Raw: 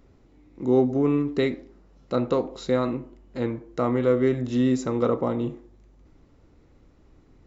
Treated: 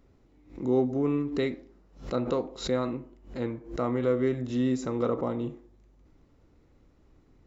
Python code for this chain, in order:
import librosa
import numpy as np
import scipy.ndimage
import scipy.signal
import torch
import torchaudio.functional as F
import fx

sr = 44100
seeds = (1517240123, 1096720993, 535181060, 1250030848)

y = fx.pre_swell(x, sr, db_per_s=140.0)
y = y * librosa.db_to_amplitude(-5.0)